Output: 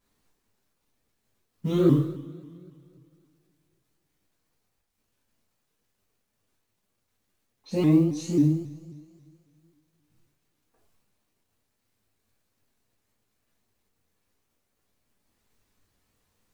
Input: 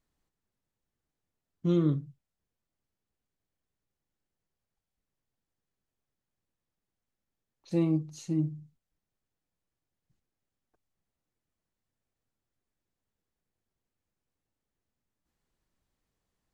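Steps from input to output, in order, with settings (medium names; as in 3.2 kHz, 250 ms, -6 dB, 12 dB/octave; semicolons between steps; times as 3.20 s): companded quantiser 8-bit; two-slope reverb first 0.64 s, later 2.5 s, from -19 dB, DRR -7 dB; vibrato with a chosen wave saw up 3.7 Hz, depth 160 cents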